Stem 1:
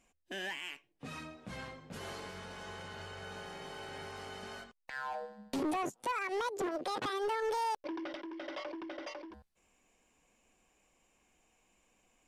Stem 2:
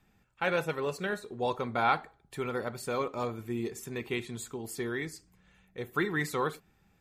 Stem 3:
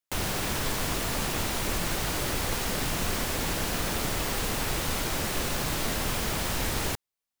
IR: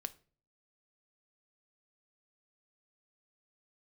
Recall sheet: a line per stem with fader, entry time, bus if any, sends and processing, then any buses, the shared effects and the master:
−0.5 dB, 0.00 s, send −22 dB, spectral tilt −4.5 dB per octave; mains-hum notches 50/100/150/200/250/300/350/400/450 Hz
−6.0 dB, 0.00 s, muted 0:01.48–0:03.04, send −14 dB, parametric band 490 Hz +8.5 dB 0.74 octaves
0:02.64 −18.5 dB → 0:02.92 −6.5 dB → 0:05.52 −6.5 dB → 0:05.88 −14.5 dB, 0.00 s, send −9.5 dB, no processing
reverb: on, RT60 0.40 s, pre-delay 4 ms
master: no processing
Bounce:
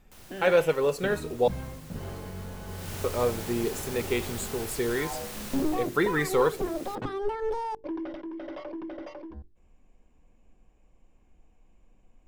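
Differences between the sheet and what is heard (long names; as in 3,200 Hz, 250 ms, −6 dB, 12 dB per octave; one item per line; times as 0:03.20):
stem 2 −6.0 dB → +1.0 dB
stem 3 −18.5 dB → −25.0 dB
master: extra high-shelf EQ 6,300 Hz +5 dB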